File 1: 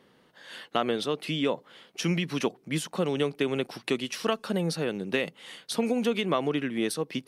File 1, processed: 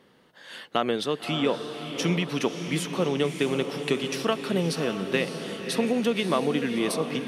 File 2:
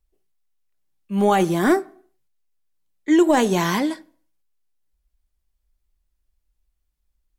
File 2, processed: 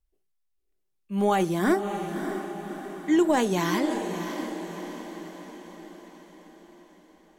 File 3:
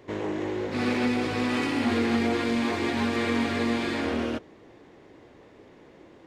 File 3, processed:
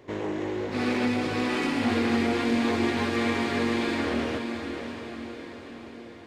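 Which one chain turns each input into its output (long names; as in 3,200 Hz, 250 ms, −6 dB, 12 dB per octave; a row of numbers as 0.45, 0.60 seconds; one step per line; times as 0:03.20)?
feedback delay with all-pass diffusion 605 ms, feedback 54%, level −7.5 dB
loudness normalisation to −27 LKFS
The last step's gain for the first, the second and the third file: +1.5, −5.5, −0.5 decibels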